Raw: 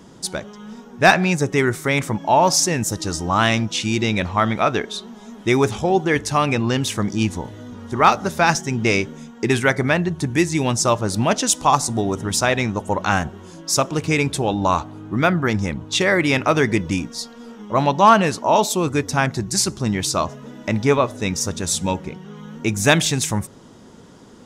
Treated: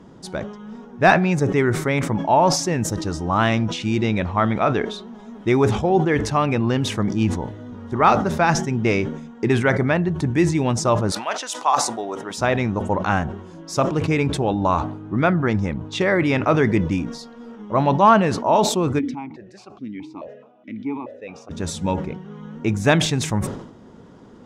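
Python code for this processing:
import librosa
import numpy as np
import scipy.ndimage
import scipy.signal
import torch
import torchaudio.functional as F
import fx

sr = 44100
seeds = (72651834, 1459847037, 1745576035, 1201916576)

y = fx.highpass(x, sr, hz=fx.line((11.1, 1100.0), (12.37, 410.0)), slope=12, at=(11.1, 12.37), fade=0.02)
y = fx.vowel_held(y, sr, hz=4.7, at=(18.98, 21.5), fade=0.02)
y = fx.lowpass(y, sr, hz=1500.0, slope=6)
y = fx.sustainer(y, sr, db_per_s=75.0)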